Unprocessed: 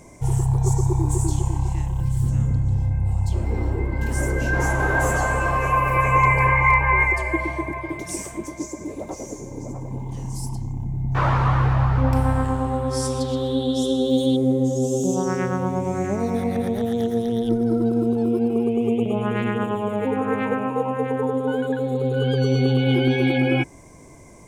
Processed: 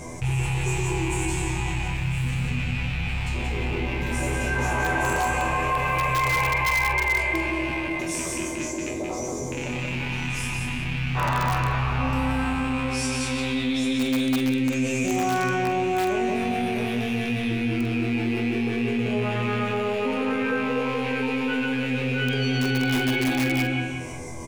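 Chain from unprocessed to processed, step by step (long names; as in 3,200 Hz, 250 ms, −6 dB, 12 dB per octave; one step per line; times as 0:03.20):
loose part that buzzes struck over −31 dBFS, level −22 dBFS
high-shelf EQ 8,500 Hz −5 dB
resonators tuned to a chord E2 fifth, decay 0.35 s
repeating echo 179 ms, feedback 25%, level −4 dB
in parallel at −5 dB: wrap-around overflow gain 23 dB
on the sum: parametric band 330 Hz −3 dB 2.6 octaves
double-tracking delay 46 ms −11.5 dB
envelope flattener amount 50%
level +3.5 dB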